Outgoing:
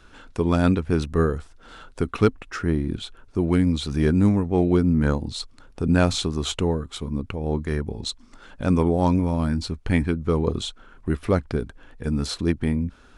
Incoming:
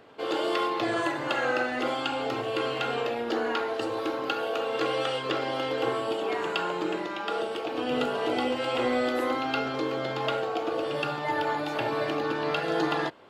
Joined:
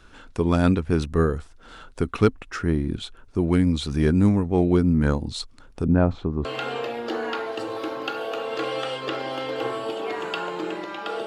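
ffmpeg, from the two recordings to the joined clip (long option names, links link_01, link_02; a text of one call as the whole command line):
ffmpeg -i cue0.wav -i cue1.wav -filter_complex "[0:a]asettb=1/sr,asplit=3[link_01][link_02][link_03];[link_01]atrim=end=5.844[link_04];[link_02]atrim=start=5.84:end=6.45,asetpts=PTS-STARTPTS,afade=type=in:duration=0.004:curve=qsin,afade=type=out:start_time=0.606:duration=0.004:curve=qsin,lowpass=1100[link_05];[link_03]atrim=start=6.446[link_06];[link_04][link_05]acrossfade=duration=0.004:curve1=hsin:curve2=qsin[link_07];[link_07][link_06]acrossfade=duration=0.004:curve1=qsin:curve2=hsin,apad=whole_dur=11.26,atrim=end=11.26,atrim=end=6.452[link_08];[1:a]atrim=start=2.668:end=7.48[link_09];[link_08][link_09]acrossfade=duration=0.004:curve1=hsin:curve2=hsin" out.wav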